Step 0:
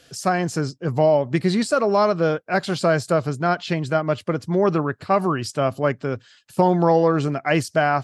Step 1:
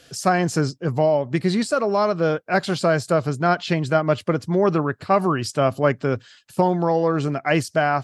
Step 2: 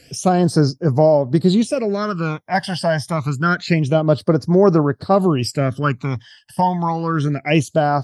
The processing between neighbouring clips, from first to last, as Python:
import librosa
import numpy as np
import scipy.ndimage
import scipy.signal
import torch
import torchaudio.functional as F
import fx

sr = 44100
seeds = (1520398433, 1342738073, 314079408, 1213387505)

y1 = fx.rider(x, sr, range_db=4, speed_s=0.5)
y2 = fx.phaser_stages(y1, sr, stages=12, low_hz=400.0, high_hz=3000.0, hz=0.27, feedback_pct=35)
y2 = y2 * 10.0 ** (5.0 / 20.0)